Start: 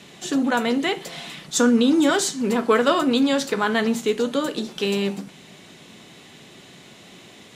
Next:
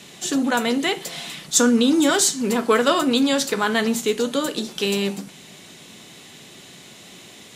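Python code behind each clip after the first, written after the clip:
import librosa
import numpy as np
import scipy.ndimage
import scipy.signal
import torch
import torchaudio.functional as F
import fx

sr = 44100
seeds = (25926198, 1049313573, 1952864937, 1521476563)

y = fx.high_shelf(x, sr, hz=4700.0, db=9.5)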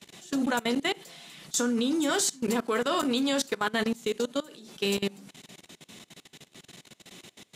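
y = fx.level_steps(x, sr, step_db=22)
y = y * librosa.db_to_amplitude(-4.0)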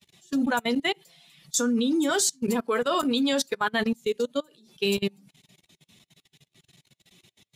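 y = fx.bin_expand(x, sr, power=1.5)
y = y * librosa.db_to_amplitude(4.5)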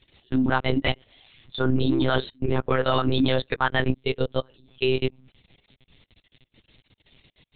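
y = fx.lpc_monotone(x, sr, seeds[0], pitch_hz=130.0, order=10)
y = y * librosa.db_to_amplitude(3.0)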